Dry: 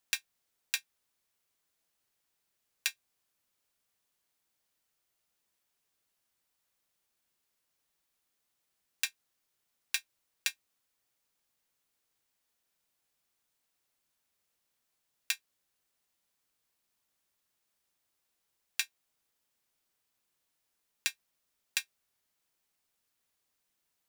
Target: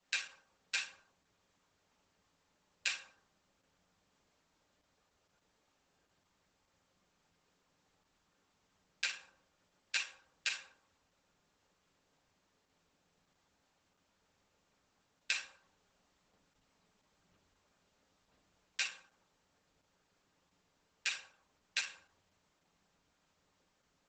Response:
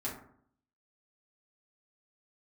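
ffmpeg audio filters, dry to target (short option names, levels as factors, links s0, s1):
-filter_complex "[0:a]aemphasis=mode=reproduction:type=50kf,acrossover=split=380[s0][s1];[s1]acompressor=threshold=0.0126:ratio=6[s2];[s0][s2]amix=inputs=2:normalize=0,asettb=1/sr,asplit=3[s3][s4][s5];[s3]atrim=end=15.334[s6];[s4]atrim=start=15.33:end=18.8,asetpts=PTS-STARTPTS,afade=t=in:d=0.004:c=qsin,afade=t=out:st=3.466:d=0.004:c=qsin,aphaser=in_gain=1:out_gain=1:delay=4.9:decay=0.48:speed=1:type=sinusoidal[s7];[s5]atrim=start=18.796[s8];[s6][s7]acrossfade=d=0.004:c1=hsin:c2=qsin[s9];[s9][s8]acrossfade=d=0.004:c1=qsin:c2=hsin[s10];[1:a]atrim=start_sample=2205,asetrate=30429,aresample=44100[s11];[s10][s11]afir=irnorm=-1:irlink=0,volume=2.51" -ar 48000 -c:a libopus -b:a 12k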